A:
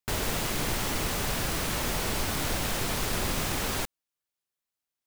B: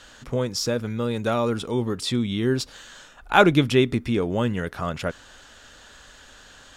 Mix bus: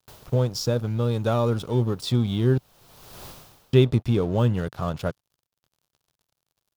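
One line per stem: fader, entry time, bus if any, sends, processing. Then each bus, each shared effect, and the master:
-7.0 dB, 0.00 s, no send, low shelf 350 Hz -9.5 dB; auto duck -22 dB, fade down 0.45 s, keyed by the second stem
+2.0 dB, 0.00 s, muted 2.58–3.73, no send, crossover distortion -40 dBFS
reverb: off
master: graphic EQ 125/250/2000/8000 Hz +7/-4/-10/-6 dB

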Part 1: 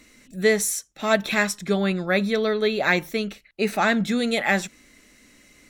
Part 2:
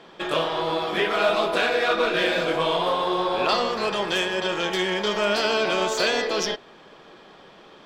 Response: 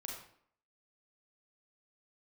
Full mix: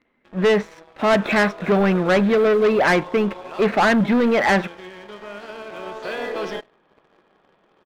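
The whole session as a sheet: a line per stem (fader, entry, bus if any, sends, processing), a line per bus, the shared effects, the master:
-2.0 dB, 0.00 s, no send, Bessel low-pass 2200 Hz, order 2; low shelf 170 Hz -10.5 dB; sample leveller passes 2
1.02 s -16 dB -> 1.34 s -9 dB, 0.05 s, send -17 dB, auto duck -13 dB, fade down 0.30 s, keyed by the first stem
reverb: on, RT60 0.60 s, pre-delay 32 ms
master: LPF 2200 Hz 12 dB/oct; sample leveller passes 2

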